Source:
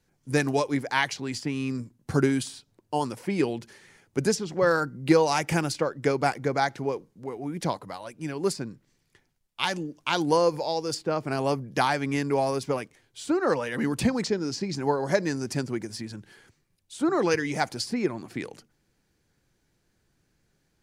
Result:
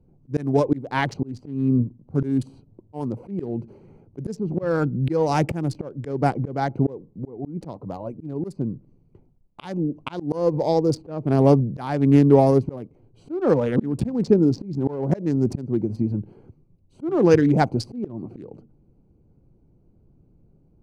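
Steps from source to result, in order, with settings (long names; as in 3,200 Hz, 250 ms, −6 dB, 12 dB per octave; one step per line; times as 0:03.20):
adaptive Wiener filter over 25 samples
tilt shelving filter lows +9 dB, about 770 Hz
volume swells 352 ms
level +7 dB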